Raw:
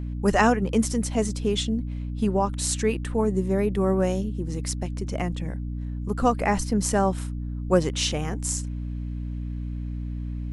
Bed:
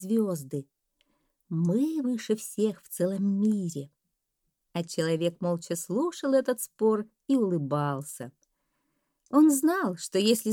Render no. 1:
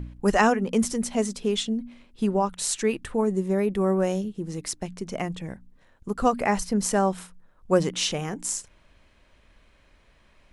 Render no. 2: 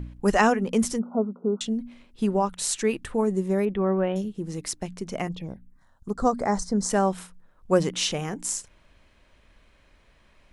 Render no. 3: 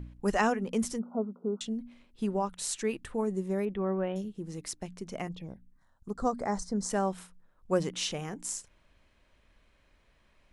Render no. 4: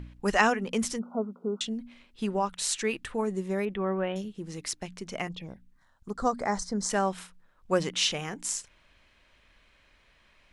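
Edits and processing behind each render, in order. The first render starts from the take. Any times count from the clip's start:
hum removal 60 Hz, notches 5
0:00.99–0:01.61: linear-phase brick-wall band-pass 160–1,500 Hz; 0:03.65–0:04.16: elliptic low-pass filter 3,400 Hz; 0:05.27–0:06.90: phaser swept by the level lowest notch 330 Hz, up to 2,700 Hz, full sweep at −28 dBFS
level −7 dB
parametric band 2,800 Hz +8.5 dB 3 octaves

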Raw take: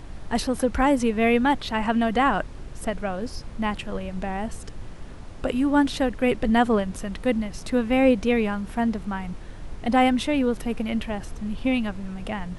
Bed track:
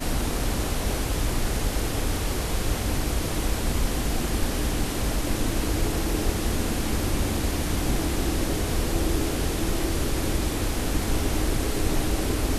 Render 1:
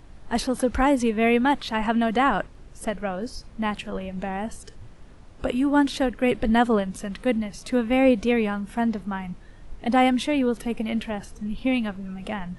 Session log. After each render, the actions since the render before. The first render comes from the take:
noise reduction from a noise print 8 dB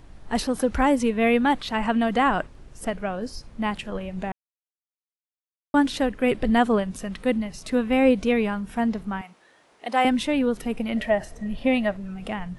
0:04.32–0:05.74: silence
0:09.21–0:10.05: high-pass filter 500 Hz
0:10.96–0:11.97: hollow resonant body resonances 630/1,900 Hz, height 14 dB, ringing for 25 ms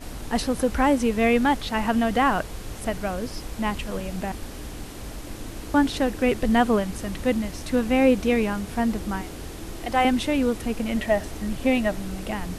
mix in bed track −10.5 dB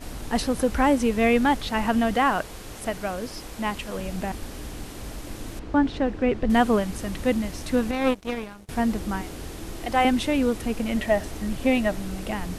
0:02.14–0:03.99: low-shelf EQ 190 Hz −7 dB
0:05.59–0:06.50: head-to-tape spacing loss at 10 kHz 22 dB
0:07.91–0:08.69: power curve on the samples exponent 2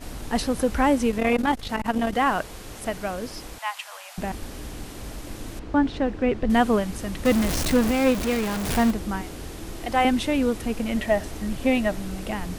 0:01.11–0:02.27: saturating transformer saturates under 350 Hz
0:03.58–0:04.18: Butterworth high-pass 730 Hz
0:07.25–0:08.91: converter with a step at zero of −21.5 dBFS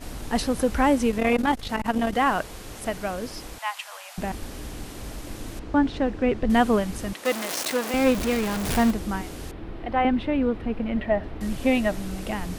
0:07.13–0:07.94: high-pass filter 480 Hz
0:09.51–0:11.41: high-frequency loss of the air 410 metres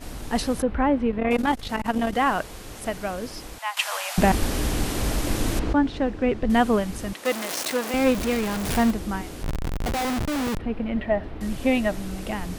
0:00.62–0:01.31: high-frequency loss of the air 460 metres
0:03.77–0:05.73: clip gain +11.5 dB
0:09.43–0:10.59: comparator with hysteresis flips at −31.5 dBFS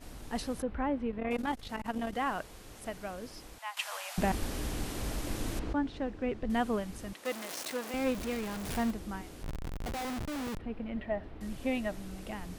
level −11 dB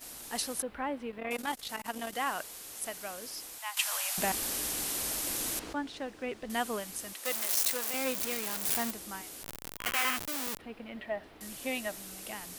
0:09.78–0:10.16: gain on a spectral selection 1,000–3,300 Hz +11 dB
RIAA equalisation recording

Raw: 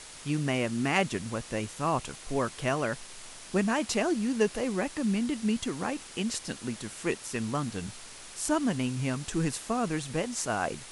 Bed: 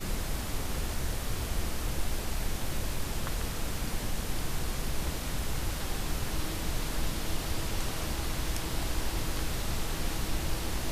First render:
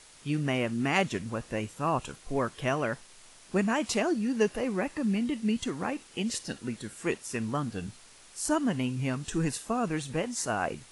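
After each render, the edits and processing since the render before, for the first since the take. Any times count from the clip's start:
noise reduction from a noise print 8 dB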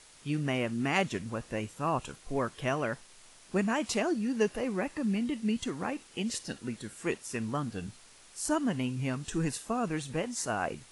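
level −2 dB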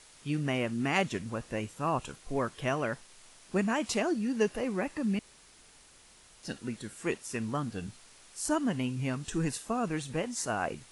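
0:05.19–0:06.43: fill with room tone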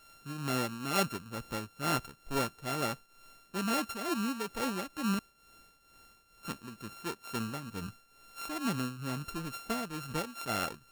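samples sorted by size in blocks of 32 samples
shaped tremolo triangle 2.2 Hz, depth 75%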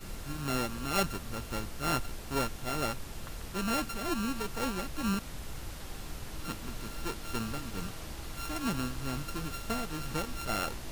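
mix in bed −9 dB

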